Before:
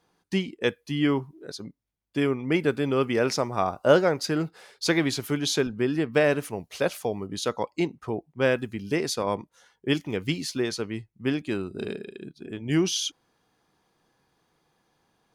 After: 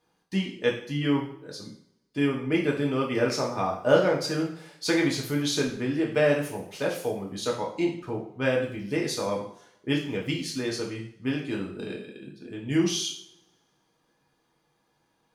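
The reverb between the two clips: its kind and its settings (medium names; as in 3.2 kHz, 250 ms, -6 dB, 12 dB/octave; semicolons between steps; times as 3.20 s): two-slope reverb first 0.52 s, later 1.7 s, from -27 dB, DRR -2 dB; trim -5.5 dB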